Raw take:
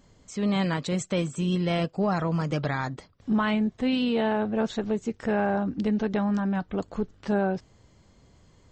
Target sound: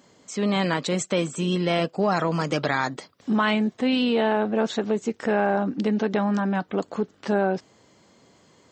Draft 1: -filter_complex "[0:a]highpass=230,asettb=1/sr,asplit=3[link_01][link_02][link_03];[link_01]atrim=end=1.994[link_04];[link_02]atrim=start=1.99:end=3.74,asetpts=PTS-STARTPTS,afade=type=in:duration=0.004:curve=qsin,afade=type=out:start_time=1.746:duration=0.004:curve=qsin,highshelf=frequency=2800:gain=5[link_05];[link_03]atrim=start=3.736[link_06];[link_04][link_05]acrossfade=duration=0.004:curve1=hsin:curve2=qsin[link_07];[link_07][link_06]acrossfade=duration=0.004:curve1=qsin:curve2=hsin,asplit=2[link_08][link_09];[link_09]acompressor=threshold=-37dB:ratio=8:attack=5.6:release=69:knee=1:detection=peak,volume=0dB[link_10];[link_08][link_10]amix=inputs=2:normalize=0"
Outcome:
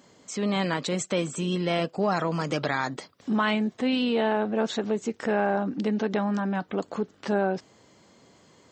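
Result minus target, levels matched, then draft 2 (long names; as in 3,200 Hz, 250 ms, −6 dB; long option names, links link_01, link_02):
downward compressor: peak gain reduction +9.5 dB
-filter_complex "[0:a]highpass=230,asettb=1/sr,asplit=3[link_01][link_02][link_03];[link_01]atrim=end=1.994[link_04];[link_02]atrim=start=1.99:end=3.74,asetpts=PTS-STARTPTS,afade=type=in:duration=0.004:curve=qsin,afade=type=out:start_time=1.746:duration=0.004:curve=qsin,highshelf=frequency=2800:gain=5[link_05];[link_03]atrim=start=3.736[link_06];[link_04][link_05]acrossfade=duration=0.004:curve1=hsin:curve2=qsin[link_07];[link_07][link_06]acrossfade=duration=0.004:curve1=qsin:curve2=hsin,asplit=2[link_08][link_09];[link_09]acompressor=threshold=-26dB:ratio=8:attack=5.6:release=69:knee=1:detection=peak,volume=0dB[link_10];[link_08][link_10]amix=inputs=2:normalize=0"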